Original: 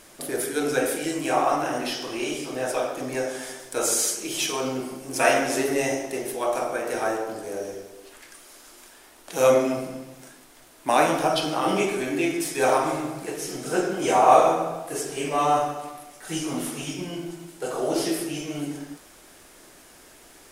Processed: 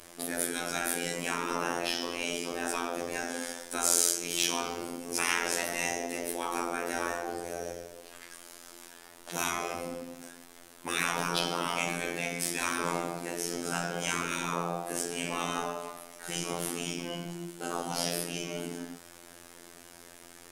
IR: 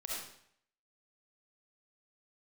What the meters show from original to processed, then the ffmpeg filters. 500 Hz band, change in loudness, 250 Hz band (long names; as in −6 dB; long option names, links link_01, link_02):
−12.0 dB, −7.0 dB, −9.0 dB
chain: -af "afftfilt=real='hypot(re,im)*cos(PI*b)':imag='0':win_size=2048:overlap=0.75,afftfilt=real='re*lt(hypot(re,im),0.141)':imag='im*lt(hypot(re,im),0.141)':win_size=1024:overlap=0.75,volume=2dB"